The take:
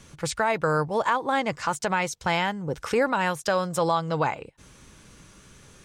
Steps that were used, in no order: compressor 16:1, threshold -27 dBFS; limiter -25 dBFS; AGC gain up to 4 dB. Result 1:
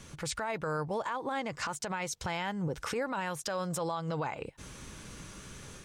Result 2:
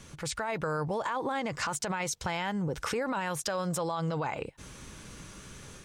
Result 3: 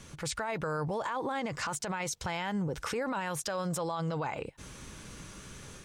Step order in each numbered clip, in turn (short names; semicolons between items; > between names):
AGC > compressor > limiter; limiter > AGC > compressor; AGC > limiter > compressor